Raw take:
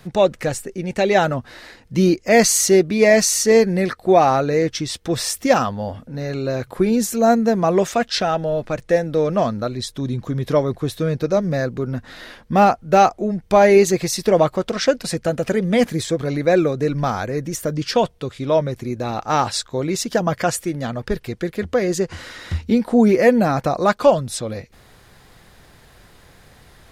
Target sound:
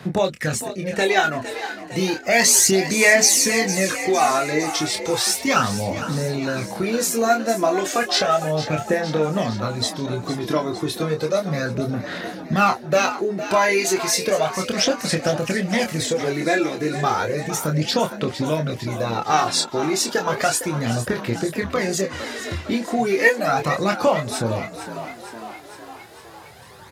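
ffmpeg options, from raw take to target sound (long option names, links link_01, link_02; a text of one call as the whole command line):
ffmpeg -i in.wav -filter_complex "[0:a]aphaser=in_gain=1:out_gain=1:delay=3:decay=0.64:speed=0.33:type=sinusoidal,acrossover=split=1100[link_01][link_02];[link_01]acompressor=threshold=-21dB:ratio=6[link_03];[link_03][link_02]amix=inputs=2:normalize=0,highpass=frequency=91:width=0.5412,highpass=frequency=91:width=1.3066,asplit=2[link_04][link_05];[link_05]adelay=26,volume=-5dB[link_06];[link_04][link_06]amix=inputs=2:normalize=0,asplit=8[link_07][link_08][link_09][link_10][link_11][link_12][link_13][link_14];[link_08]adelay=458,afreqshift=55,volume=-12dB[link_15];[link_09]adelay=916,afreqshift=110,volume=-16dB[link_16];[link_10]adelay=1374,afreqshift=165,volume=-20dB[link_17];[link_11]adelay=1832,afreqshift=220,volume=-24dB[link_18];[link_12]adelay=2290,afreqshift=275,volume=-28.1dB[link_19];[link_13]adelay=2748,afreqshift=330,volume=-32.1dB[link_20];[link_14]adelay=3206,afreqshift=385,volume=-36.1dB[link_21];[link_07][link_15][link_16][link_17][link_18][link_19][link_20][link_21]amix=inputs=8:normalize=0" out.wav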